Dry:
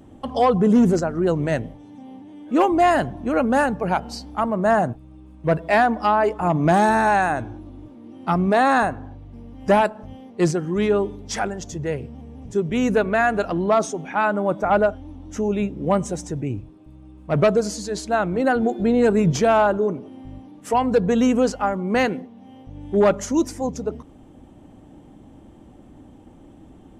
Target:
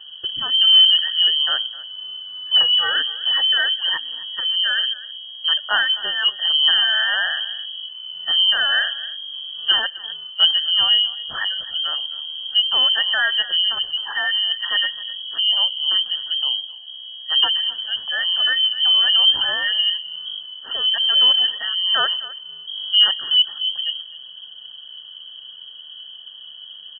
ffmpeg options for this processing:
-filter_complex "[0:a]afftfilt=real='re*(1-between(b*sr/4096,420,1400))':imag='im*(1-between(b*sr/4096,420,1400))':win_size=4096:overlap=0.75,asplit=2[s0][s1];[s1]acompressor=threshold=0.02:ratio=16,volume=0.708[s2];[s0][s2]amix=inputs=2:normalize=0,aecho=1:1:258:0.119,lowpass=f=2800:t=q:w=0.5098,lowpass=f=2800:t=q:w=0.6013,lowpass=f=2800:t=q:w=0.9,lowpass=f=2800:t=q:w=2.563,afreqshift=-3300,volume=1.41"

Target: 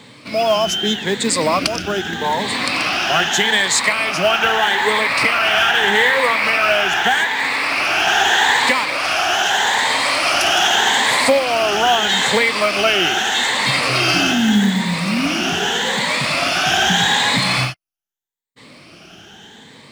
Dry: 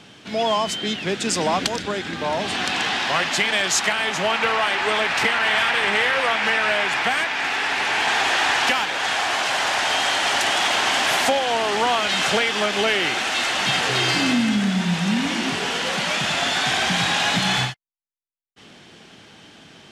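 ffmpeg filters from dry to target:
-af "afftfilt=real='re*pow(10,11/40*sin(2*PI*(0.99*log(max(b,1)*sr/1024/100)/log(2)-(0.81)*(pts-256)/sr)))':imag='im*pow(10,11/40*sin(2*PI*(0.99*log(max(b,1)*sr/1024/100)/log(2)-(0.81)*(pts-256)/sr)))':win_size=1024:overlap=0.75,acrusher=bits=7:mode=log:mix=0:aa=0.000001,volume=1.41"

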